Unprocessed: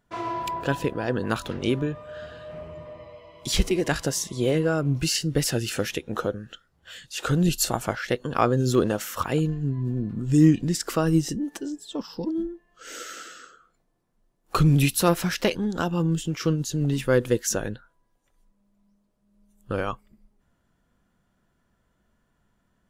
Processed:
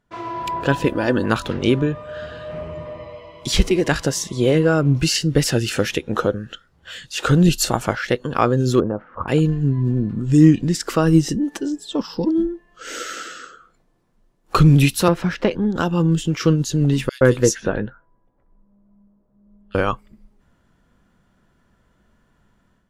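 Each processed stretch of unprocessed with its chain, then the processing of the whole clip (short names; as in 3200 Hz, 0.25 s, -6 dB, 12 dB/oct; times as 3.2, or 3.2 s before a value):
0.86–1.26 high shelf 8800 Hz +11.5 dB + comb 3.4 ms, depth 48%
8.8–9.28 ladder low-pass 1500 Hz, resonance 25% + tilt shelf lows +4 dB, about 900 Hz
15.08–15.76 LPF 1400 Hz 6 dB/oct + three-band squash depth 40%
17.09–19.75 low-pass opened by the level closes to 1000 Hz, open at -20 dBFS + doubler 15 ms -11 dB + bands offset in time highs, lows 0.12 s, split 2900 Hz
whole clip: high shelf 8900 Hz -9.5 dB; AGC gain up to 9 dB; bell 690 Hz -2.5 dB 0.27 oct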